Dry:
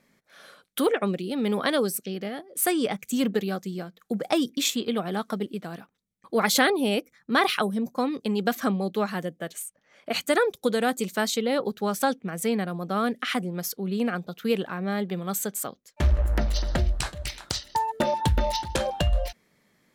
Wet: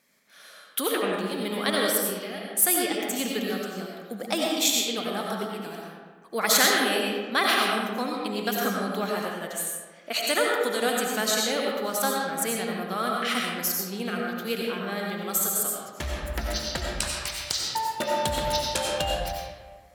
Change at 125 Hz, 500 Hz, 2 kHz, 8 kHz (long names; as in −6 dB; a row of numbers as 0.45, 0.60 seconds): −8.0, −1.0, +2.5, +6.0 decibels